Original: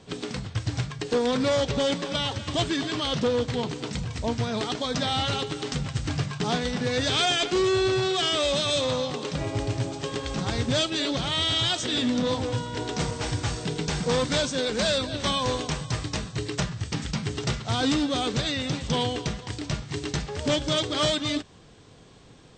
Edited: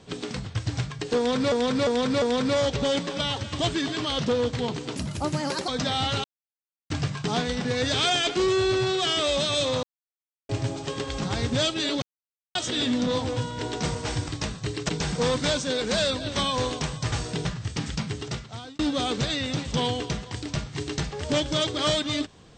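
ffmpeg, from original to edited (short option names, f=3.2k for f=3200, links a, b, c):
-filter_complex "[0:a]asplit=17[a][b][c][d][e][f][g][h][i][j][k][l][m][n][o][p][q];[a]atrim=end=1.522[r];[b]atrim=start=1.168:end=1.522[s];[c]atrim=start=1.168:end=1.522[t];[d]atrim=start=1.168:end=3.914[u];[e]atrim=start=3.91:end=4.84,asetpts=PTS-STARTPTS,asetrate=56889,aresample=44100,atrim=end_sample=31793,asetpts=PTS-STARTPTS[v];[f]atrim=start=4.836:end=5.4,asetpts=PTS-STARTPTS,afade=t=out:st=0.56:d=0.004:c=hsin[w];[g]atrim=start=5.4:end=6.06,asetpts=PTS-STARTPTS,volume=0[x];[h]atrim=start=6.06:end=8.99,asetpts=PTS-STARTPTS,afade=t=in:d=0.004:c=hsin,afade=t=out:st=2.926:d=0.004:c=hsin[y];[i]atrim=start=8.99:end=9.65,asetpts=PTS-STARTPTS,volume=0[z];[j]atrim=start=9.65:end=11.18,asetpts=PTS-STARTPTS,afade=t=in:d=0.004:c=hsin,afade=t=out:st=1.526:d=0.004:c=hsin[aa];[k]atrim=start=11.18:end=11.71,asetpts=PTS-STARTPTS,volume=0[ab];[l]atrim=start=11.71:end=13.442,asetpts=PTS-STARTPTS,afade=t=in:d=0.004:c=hsin[ac];[m]atrim=start=15.998:end=16.612[ad];[n]atrim=start=13.768:end=16.002[ae];[o]atrim=start=13.438:end=13.772[af];[p]atrim=start=16.608:end=17.95,asetpts=PTS-STARTPTS,afade=t=out:st=0.522:d=0.82[ag];[q]atrim=start=17.95,asetpts=PTS-STARTPTS,afade=t=in:d=0.004:c=hsin[ah];[r][s]acrossfade=d=0.004:c1=hsin:c2=hsin[ai];[ai][t]acrossfade=d=0.004:c1=hsin:c2=hsin[aj];[aj][u]acrossfade=d=0.004:c1=hsin:c2=hsin[ak];[ak][v]acrossfade=d=0.004:c1=hsin:c2=hsin[al];[w][x][y][z][aa][ab][ac]concat=n=7:v=0:a=1[am];[al][am]acrossfade=d=0.004:c1=hsin:c2=hsin[an];[an][ad]acrossfade=d=0.004:c1=hsin:c2=hsin[ao];[ao][ae]acrossfade=d=0.004:c1=hsin:c2=hsin[ap];[ap][af]acrossfade=d=0.004:c1=hsin:c2=hsin[aq];[ag][ah]concat=n=2:v=0:a=1[ar];[aq][ar]acrossfade=d=0.004:c1=hsin:c2=hsin"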